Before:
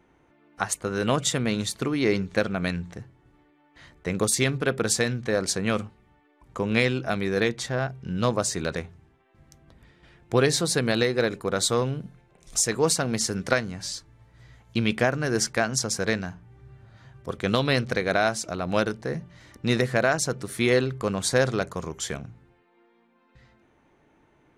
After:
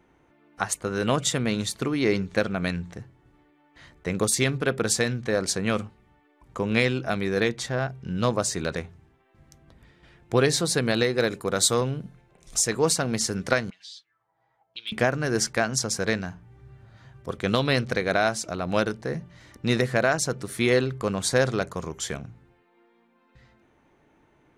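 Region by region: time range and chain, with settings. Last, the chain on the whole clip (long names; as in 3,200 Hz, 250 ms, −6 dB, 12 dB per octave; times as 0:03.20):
0:11.18–0:11.81: high-pass filter 43 Hz + high-shelf EQ 6,200 Hz +7.5 dB
0:13.70–0:14.92: comb filter 6.2 ms, depth 89% + envelope filter 610–3,500 Hz, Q 6, up, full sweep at −30 dBFS + hard clipping −22.5 dBFS
whole clip: no processing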